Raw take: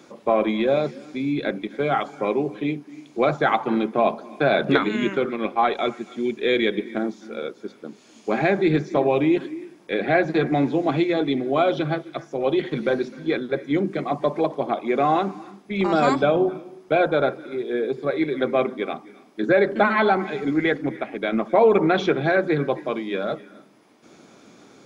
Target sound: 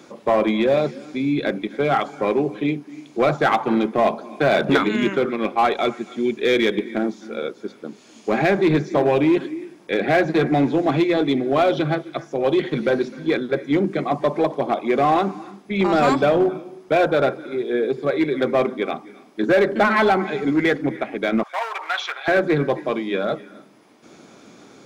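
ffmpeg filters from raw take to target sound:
-filter_complex "[0:a]asplit=2[a][b];[b]aeval=exprs='0.15*(abs(mod(val(0)/0.15+3,4)-2)-1)':c=same,volume=-7dB[c];[a][c]amix=inputs=2:normalize=0,asettb=1/sr,asplit=3[d][e][f];[d]atrim=end=21.434[g];[e]atrim=start=21.43:end=22.28,asetpts=PTS-STARTPTS,afade=t=in:d=0.004:c=qsin,afade=t=out:st=0.846:d=0.004:c=qsin,highpass=f=920:w=0.5412,highpass=f=920:w=1.3066[h];[f]atrim=start=22.276[i];[g][h]acrossfade=d=0.004:c1=hsin:c2=qsin[j];[j][i]acrossfade=d=0.004:c1=qsin:c2=hsin"

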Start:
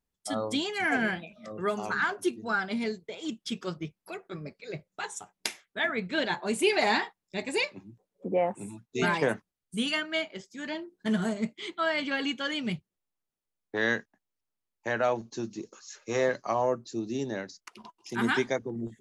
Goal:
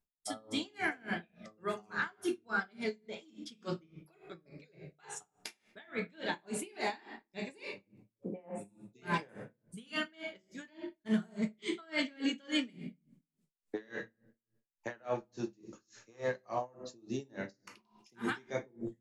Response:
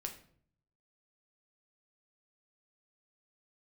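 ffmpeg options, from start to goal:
-filter_complex "[0:a]asettb=1/sr,asplit=3[a][b][c];[a]atrim=end=11.624[d];[b]atrim=start=11.62:end=13.89,asetpts=PTS-STARTPTS,afade=t=in:d=0.004:c=qsin,afade=t=out:st=2.266:d=0.004:c=qsin,equalizer=f=125:t=o:w=1:g=-6,equalizer=f=250:t=o:w=1:g=11,equalizer=f=500:t=o:w=1:g=5,equalizer=f=2k:t=o:w=1:g=5,equalizer=f=4k:t=o:w=1:g=3,equalizer=f=8k:t=o:w=1:g=10[e];[c]atrim=start=13.886[f];[d][e]acrossfade=d=0.004:c1=hsin:c2=qsin[g];[g][f]acrossfade=d=0.004:c1=qsin:c2=hsin,alimiter=limit=-20.5dB:level=0:latency=1:release=28[h];[1:a]atrim=start_sample=2205,asetrate=42336,aresample=44100[i];[h][i]afir=irnorm=-1:irlink=0,aeval=exprs='val(0)*pow(10,-29*(0.5-0.5*cos(2*PI*3.5*n/s))/20)':c=same"

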